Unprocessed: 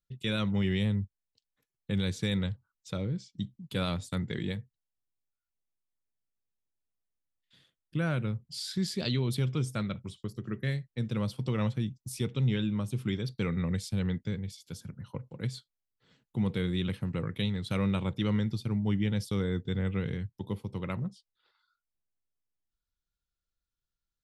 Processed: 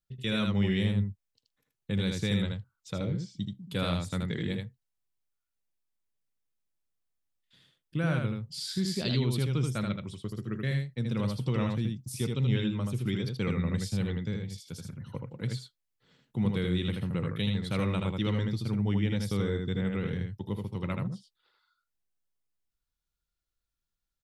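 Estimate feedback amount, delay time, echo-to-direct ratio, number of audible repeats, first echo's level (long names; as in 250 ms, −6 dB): repeats not evenly spaced, 79 ms, −4.0 dB, 1, −4.0 dB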